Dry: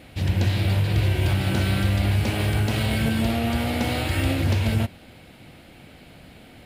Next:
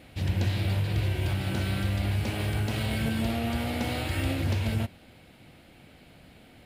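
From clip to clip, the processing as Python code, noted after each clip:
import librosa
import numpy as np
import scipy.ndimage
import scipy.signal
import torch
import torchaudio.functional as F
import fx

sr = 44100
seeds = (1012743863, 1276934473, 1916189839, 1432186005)

y = fx.rider(x, sr, range_db=10, speed_s=2.0)
y = F.gain(torch.from_numpy(y), -6.0).numpy()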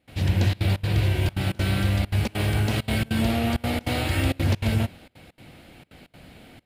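y = fx.step_gate(x, sr, bpm=198, pattern='.xxxxxx.xx', floor_db=-24.0, edge_ms=4.5)
y = F.gain(torch.from_numpy(y), 5.5).numpy()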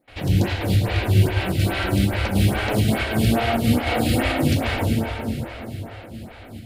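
y = fx.rev_plate(x, sr, seeds[0], rt60_s=4.6, hf_ratio=0.75, predelay_ms=0, drr_db=-1.5)
y = fx.stagger_phaser(y, sr, hz=2.4)
y = F.gain(torch.from_numpy(y), 5.0).numpy()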